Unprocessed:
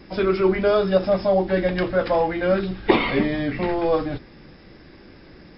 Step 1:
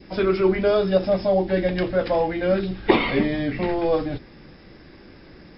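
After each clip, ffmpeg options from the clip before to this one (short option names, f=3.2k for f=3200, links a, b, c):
-af "adynamicequalizer=threshold=0.0112:dfrequency=1200:dqfactor=1.5:tfrequency=1200:tqfactor=1.5:attack=5:release=100:ratio=0.375:range=3:mode=cutabove:tftype=bell"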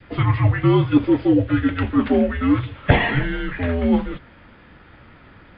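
-af "highpass=f=350:t=q:w=0.5412,highpass=f=350:t=q:w=1.307,lowpass=f=3.5k:t=q:w=0.5176,lowpass=f=3.5k:t=q:w=0.7071,lowpass=f=3.5k:t=q:w=1.932,afreqshift=-270,volume=4.5dB"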